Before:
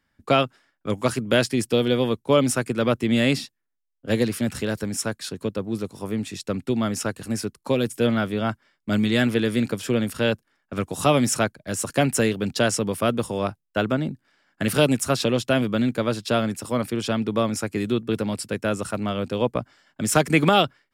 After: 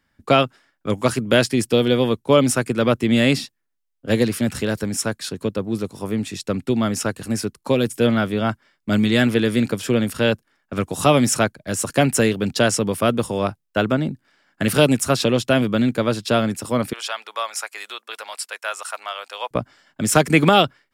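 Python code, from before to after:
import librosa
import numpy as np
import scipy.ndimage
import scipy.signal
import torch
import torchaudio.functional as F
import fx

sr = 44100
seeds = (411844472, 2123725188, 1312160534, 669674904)

y = fx.highpass(x, sr, hz=780.0, slope=24, at=(16.93, 19.51))
y = y * 10.0 ** (3.5 / 20.0)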